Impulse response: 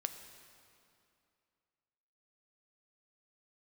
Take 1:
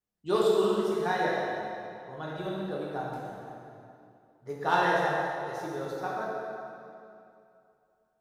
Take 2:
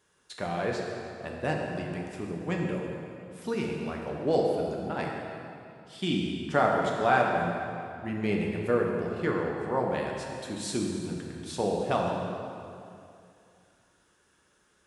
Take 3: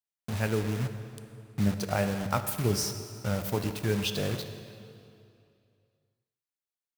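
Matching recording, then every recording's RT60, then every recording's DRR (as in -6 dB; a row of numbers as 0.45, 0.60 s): 3; 2.6, 2.6, 2.5 s; -5.5, -1.5, 7.5 dB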